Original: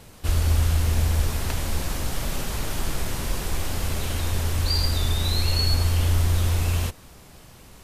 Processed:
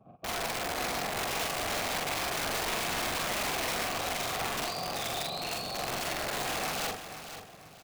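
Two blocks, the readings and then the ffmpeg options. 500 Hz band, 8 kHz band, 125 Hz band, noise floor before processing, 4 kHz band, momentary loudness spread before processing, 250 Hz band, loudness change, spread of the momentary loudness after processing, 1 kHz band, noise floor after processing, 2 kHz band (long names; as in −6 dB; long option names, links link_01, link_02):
+0.5 dB, −3.0 dB, −23.0 dB, −48 dBFS, −4.0 dB, 8 LU, −7.0 dB, −7.0 dB, 5 LU, +3.5 dB, −52 dBFS, +2.0 dB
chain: -filter_complex "[0:a]afftfilt=real='re*gte(hypot(re,im),0.0355)':imag='im*gte(hypot(re,im),0.0355)':win_size=1024:overlap=0.75,equalizer=frequency=75:width=1.3:gain=9,acrossover=split=180|4300[link_01][link_02][link_03];[link_01]acompressor=threshold=-22dB:ratio=4[link_04];[link_02]acompressor=threshold=-44dB:ratio=4[link_05];[link_03]acompressor=threshold=-42dB:ratio=4[link_06];[link_04][link_05][link_06]amix=inputs=3:normalize=0,afftfilt=real='hypot(re,im)*cos(2*PI*random(0))':imag='hypot(re,im)*sin(2*PI*random(1))':win_size=512:overlap=0.75,asplit=2[link_07][link_08];[link_08]highpass=frequency=720:poles=1,volume=40dB,asoftclip=type=tanh:threshold=-17dB[link_09];[link_07][link_09]amix=inputs=2:normalize=0,lowpass=frequency=7200:poles=1,volume=-6dB,asplit=3[link_10][link_11][link_12];[link_10]bandpass=frequency=730:width_type=q:width=8,volume=0dB[link_13];[link_11]bandpass=frequency=1090:width_type=q:width=8,volume=-6dB[link_14];[link_12]bandpass=frequency=2440:width_type=q:width=8,volume=-9dB[link_15];[link_13][link_14][link_15]amix=inputs=3:normalize=0,aeval=exprs='(mod(59.6*val(0)+1,2)-1)/59.6':channel_layout=same,asplit=2[link_16][link_17];[link_17]adelay=44,volume=-2.5dB[link_18];[link_16][link_18]amix=inputs=2:normalize=0,aecho=1:1:488|976|1464:0.299|0.0955|0.0306,volume=6.5dB"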